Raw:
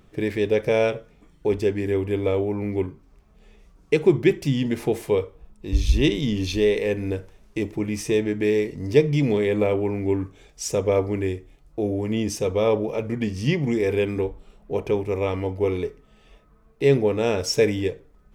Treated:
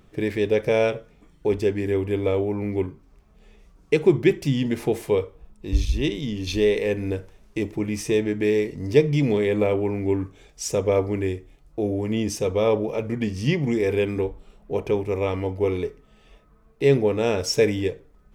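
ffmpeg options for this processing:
-filter_complex "[0:a]asplit=3[s0][s1][s2];[s0]atrim=end=5.852[s3];[s1]atrim=start=5.848:end=6.472,asetpts=PTS-STARTPTS,volume=0.596[s4];[s2]atrim=start=6.468[s5];[s3][s4]acrossfade=d=0.004:c1=hsin:c2=hsin[s6];[s6][s5]acrossfade=d=0.004:c1=hsin:c2=hsin"

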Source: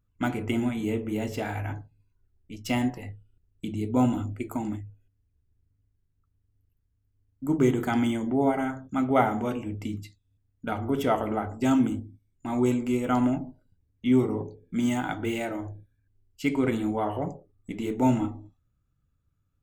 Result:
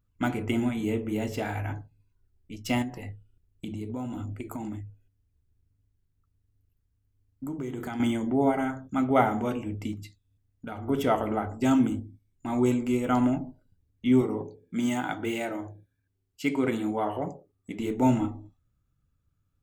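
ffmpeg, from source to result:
-filter_complex "[0:a]asettb=1/sr,asplit=3[s0][s1][s2];[s0]atrim=end=2.824[s3];[s1]atrim=start=2.82:end=8,asetpts=PTS-STARTPTS,afade=t=in:d=0.004:c=qsin,afade=t=out:st=5.176:d=0.004:c=qsin,acompressor=threshold=0.0282:ratio=6:attack=3.2:release=140:knee=1:detection=peak[s4];[s2]atrim=start=7.996[s5];[s3][s4]acrossfade=d=0.004:c1=hsin:c2=qsin[s6];[s6][s5]acrossfade=d=0.004:c1=qsin:c2=hsin,asettb=1/sr,asplit=3[s7][s8][s9];[s7]atrim=end=9.934[s10];[s8]atrim=start=9.93:end=10.88,asetpts=PTS-STARTPTS,afade=t=in:d=0.004:c=qsin,afade=t=out:st=0.946:d=0.004:c=qsin,acompressor=threshold=0.0158:ratio=2.5:attack=3.2:release=140:knee=1:detection=peak[s11];[s9]atrim=start=10.876[s12];[s10][s11]acrossfade=d=0.004:c1=hsin:c2=qsin[s13];[s13][s12]acrossfade=d=0.004:c1=qsin:c2=hsin,asettb=1/sr,asplit=3[s14][s15][s16];[s14]atrim=end=14.214[s17];[s15]atrim=start=14.21:end=17.79,asetpts=PTS-STARTPTS,afade=t=in:d=0.004:c=qsin,afade=t=out:st=3.576:d=0.004:c=qsin,highpass=f=170:p=1[s18];[s16]atrim=start=17.786[s19];[s17][s18]acrossfade=d=0.004:c1=hsin:c2=qsin[s20];[s20][s19]acrossfade=d=0.004:c1=qsin:c2=hsin"

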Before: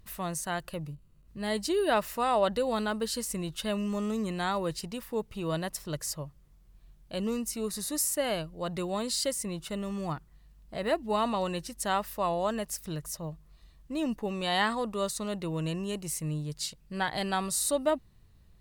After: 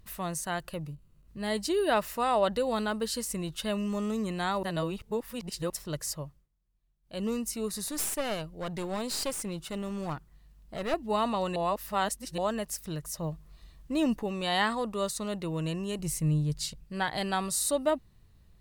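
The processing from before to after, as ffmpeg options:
-filter_complex "[0:a]asettb=1/sr,asplit=3[s0][s1][s2];[s0]atrim=end=7.874[s3];[s1]atrim=start=7.87:end=10.94,asetpts=PTS-STARTPTS,afade=t=in:d=0.004:c=qsin,afade=t=out:st=3.066:d=0.004:c=qsin,aeval=exprs='clip(val(0),-1,0.0158)':c=same[s4];[s2]atrim=start=10.936[s5];[s3][s4]acrossfade=d=0.004:c1=hsin:c2=qsin[s6];[s6][s5]acrossfade=d=0.004:c1=qsin:c2=hsin,asettb=1/sr,asplit=3[s7][s8][s9];[s7]atrim=end=15.994[s10];[s8]atrim=start=15.99:end=16.84,asetpts=PTS-STARTPTS,afade=t=in:d=0.004:c=qsin,afade=t=out:st=0.846:d=0.004:c=qsin,lowshelf=f=180:g=12[s11];[s9]atrim=start=16.836[s12];[s10][s11]acrossfade=d=0.004:c1=hsin:c2=qsin[s13];[s13][s12]acrossfade=d=0.004:c1=qsin:c2=hsin,asplit=9[s14][s15][s16][s17][s18][s19][s20][s21][s22];[s14]atrim=end=4.632[s23];[s15]atrim=start=4.628:end=5.702,asetpts=PTS-STARTPTS,areverse[s24];[s16]atrim=start=5.698:end=6.48,asetpts=PTS-STARTPTS,afade=t=out:st=0.562:d=0.22:silence=0.105925[s25];[s17]atrim=start=6.48:end=7.02,asetpts=PTS-STARTPTS,volume=0.106[s26];[s18]atrim=start=7.02:end=11.562,asetpts=PTS-STARTPTS,afade=t=in:d=0.22:silence=0.105925[s27];[s19]atrim=start=11.558:end=12.382,asetpts=PTS-STARTPTS,areverse[s28];[s20]atrim=start=12.378:end=13.172[s29];[s21]atrim=start=13.168:end=14.232,asetpts=PTS-STARTPTS,volume=1.58[s30];[s22]atrim=start=14.228[s31];[s23][s24]acrossfade=d=0.004:c1=hsin:c2=hsin[s32];[s25][s26][s27]concat=n=3:v=0:a=1[s33];[s32][s33]acrossfade=d=0.004:c1=hsin:c2=hsin[s34];[s34][s28]acrossfade=d=0.004:c1=hsin:c2=hsin[s35];[s35][s29]acrossfade=d=0.004:c1=hsin:c2=hsin[s36];[s36][s30]acrossfade=d=0.004:c1=hsin:c2=hsin[s37];[s37][s31]acrossfade=d=0.004:c1=hsin:c2=hsin"

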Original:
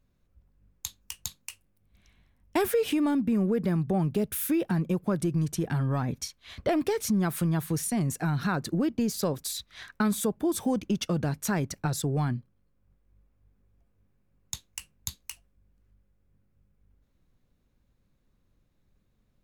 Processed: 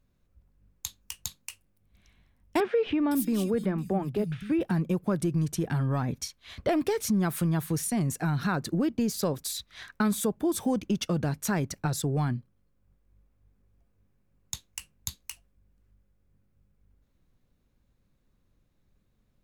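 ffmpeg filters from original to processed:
-filter_complex "[0:a]asettb=1/sr,asplit=3[s0][s1][s2];[s0]atrim=end=2.604[s3];[s1]atrim=start=2.6:end=4.61,asetpts=PTS-STARTPTS,afade=t=in:d=0.004:c=qsin,afade=t=out:st=2.006:d=0.004:c=qsin,acrossover=split=160|3500[s4][s5][s6];[s4]adelay=260[s7];[s6]adelay=510[s8];[s7][s5][s8]amix=inputs=3:normalize=0,atrim=end_sample=88641[s9];[s2]atrim=start=4.606[s10];[s3][s9]acrossfade=d=0.004:c1=hsin:c2=qsin[s11];[s11][s10]acrossfade=d=0.004:c1=qsin:c2=hsin"

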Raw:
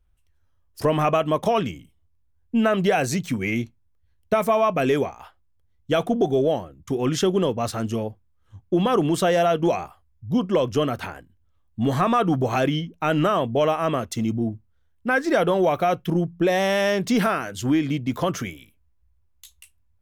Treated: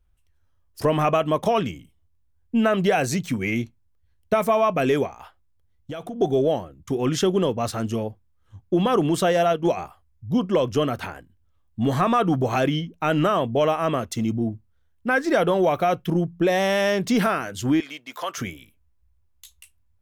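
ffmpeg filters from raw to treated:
-filter_complex "[0:a]asplit=3[s0][s1][s2];[s0]afade=t=out:st=5.06:d=0.02[s3];[s1]acompressor=threshold=0.0316:ratio=6:attack=3.2:release=140:knee=1:detection=peak,afade=t=in:st=5.06:d=0.02,afade=t=out:st=6.2:d=0.02[s4];[s2]afade=t=in:st=6.2:d=0.02[s5];[s3][s4][s5]amix=inputs=3:normalize=0,asplit=3[s6][s7][s8];[s6]afade=t=out:st=9.23:d=0.02[s9];[s7]agate=range=0.501:threshold=0.0891:ratio=16:release=100:detection=peak,afade=t=in:st=9.23:d=0.02,afade=t=out:st=9.76:d=0.02[s10];[s8]afade=t=in:st=9.76:d=0.02[s11];[s9][s10][s11]amix=inputs=3:normalize=0,asettb=1/sr,asplit=3[s12][s13][s14];[s12]atrim=end=17.804[s15];[s13]atrim=start=17.8:end=18.38,asetpts=PTS-STARTPTS,afade=t=in:d=0.004:c=qsin,afade=t=out:st=0.576:d=0.004:c=qsin,highpass=830[s16];[s14]atrim=start=18.376[s17];[s15][s16]acrossfade=d=0.004:c1=hsin:c2=qsin[s18];[s18][s17]acrossfade=d=0.004:c1=qsin:c2=hsin"

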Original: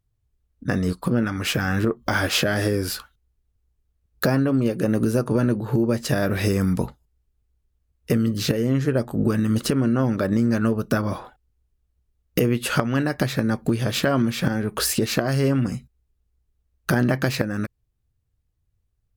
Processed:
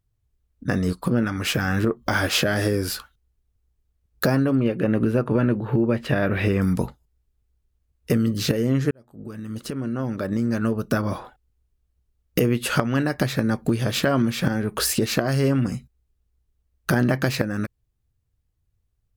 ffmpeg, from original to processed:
-filter_complex "[0:a]asettb=1/sr,asplit=3[s0][s1][s2];[s0]atrim=end=4.554[s3];[s1]atrim=start=4.55:end=6.62,asetpts=PTS-STARTPTS,afade=t=in:d=0.004:c=qsin,afade=t=out:st=2.066:d=0.004:c=qsin,highshelf=f=4100:t=q:w=1.5:g=-13.5[s4];[s2]atrim=start=6.616[s5];[s3][s4]acrossfade=d=0.004:c1=hsin:c2=qsin[s6];[s6][s5]acrossfade=d=0.004:c1=qsin:c2=hsin,asplit=2[s7][s8];[s7]atrim=end=8.91,asetpts=PTS-STARTPTS,afade=t=out:st=8.906:d=0.004:c=hsin[s9];[s8]atrim=start=8.91,asetpts=PTS-STARTPTS,afade=t=in:d=2.21[s10];[s9][s10]concat=n=2:v=0:a=1"

